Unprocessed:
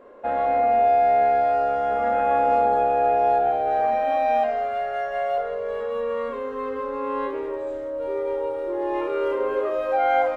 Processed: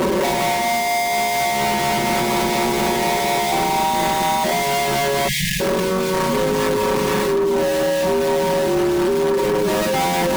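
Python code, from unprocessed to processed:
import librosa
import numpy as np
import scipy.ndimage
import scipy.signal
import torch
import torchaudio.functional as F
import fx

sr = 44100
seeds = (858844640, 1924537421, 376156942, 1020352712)

y = np.sign(x) * np.sqrt(np.mean(np.square(x)))
y = scipy.signal.sosfilt(scipy.signal.butter(2, 53.0, 'highpass', fs=sr, output='sos'), y)
y = fx.peak_eq(y, sr, hz=940.0, db=12.0, octaves=0.21)
y = y * (1.0 - 0.57 / 2.0 + 0.57 / 2.0 * np.cos(2.0 * np.pi * 4.2 * (np.arange(len(y)) / sr)))
y = fx.low_shelf_res(y, sr, hz=450.0, db=11.0, q=1.5)
y = fx.echo_wet_highpass(y, sr, ms=1134, feedback_pct=64, hz=2600.0, wet_db=-9)
y = 10.0 ** (-22.0 / 20.0) * np.tanh(y / 10.0 ** (-22.0 / 20.0))
y = fx.spec_erase(y, sr, start_s=5.28, length_s=0.32, low_hz=210.0, high_hz=1600.0)
y = y + 0.83 * np.pad(y, (int(5.3 * sr / 1000.0), 0))[:len(y)]
y = fx.env_flatten(y, sr, amount_pct=70)
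y = y * 10.0 ** (2.0 / 20.0)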